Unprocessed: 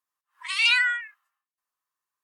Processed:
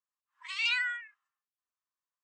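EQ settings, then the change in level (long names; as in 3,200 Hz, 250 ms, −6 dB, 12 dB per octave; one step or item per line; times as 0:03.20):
Chebyshev low-pass filter 8,000 Hz, order 6
−9.0 dB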